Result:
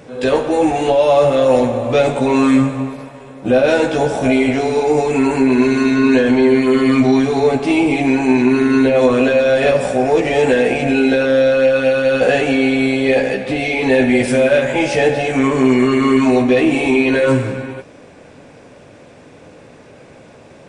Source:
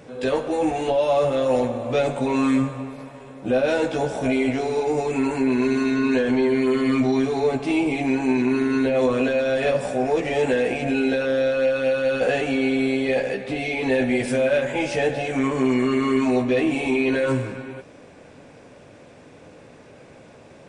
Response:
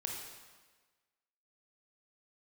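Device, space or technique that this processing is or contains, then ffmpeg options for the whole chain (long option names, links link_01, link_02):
keyed gated reverb: -filter_complex "[0:a]asplit=3[link_01][link_02][link_03];[1:a]atrim=start_sample=2205[link_04];[link_02][link_04]afir=irnorm=-1:irlink=0[link_05];[link_03]apad=whole_len=912345[link_06];[link_05][link_06]sidechaingate=range=-33dB:threshold=-35dB:ratio=16:detection=peak,volume=-7dB[link_07];[link_01][link_07]amix=inputs=2:normalize=0,volume=5dB"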